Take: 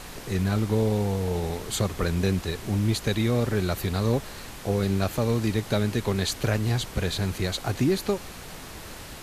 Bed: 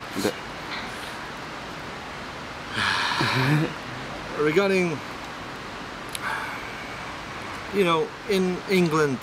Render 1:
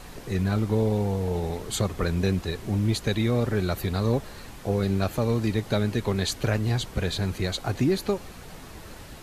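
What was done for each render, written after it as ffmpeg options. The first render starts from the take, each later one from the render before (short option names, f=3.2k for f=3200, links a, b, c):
-af "afftdn=nr=6:nf=-41"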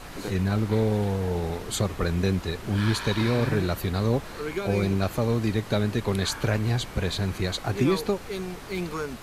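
-filter_complex "[1:a]volume=-10.5dB[a];[0:a][a]amix=inputs=2:normalize=0"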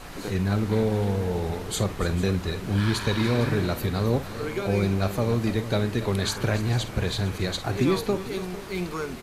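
-filter_complex "[0:a]asplit=2[a][b];[b]adelay=50,volume=-13.5dB[c];[a][c]amix=inputs=2:normalize=0,aecho=1:1:286|451:0.188|0.158"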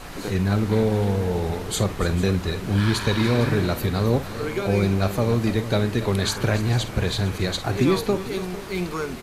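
-af "volume=3dB"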